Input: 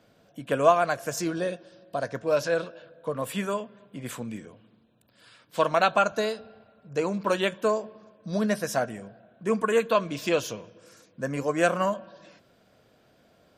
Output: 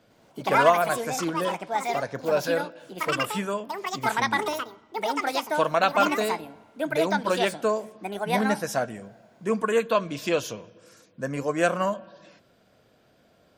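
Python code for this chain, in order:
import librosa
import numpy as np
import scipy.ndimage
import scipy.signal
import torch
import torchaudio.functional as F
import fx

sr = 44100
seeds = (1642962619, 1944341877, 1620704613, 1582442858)

y = fx.echo_pitch(x, sr, ms=107, semitones=6, count=2, db_per_echo=-3.0)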